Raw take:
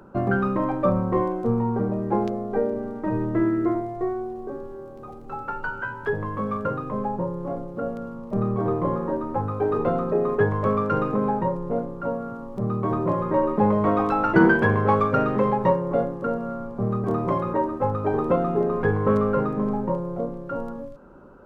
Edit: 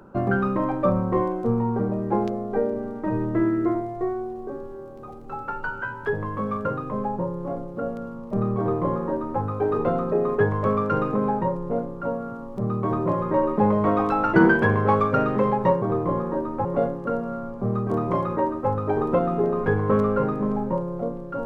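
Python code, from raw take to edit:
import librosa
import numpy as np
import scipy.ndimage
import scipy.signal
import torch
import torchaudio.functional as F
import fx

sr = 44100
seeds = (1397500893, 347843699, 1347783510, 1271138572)

y = fx.edit(x, sr, fx.duplicate(start_s=8.58, length_s=0.83, to_s=15.82), tone=tone)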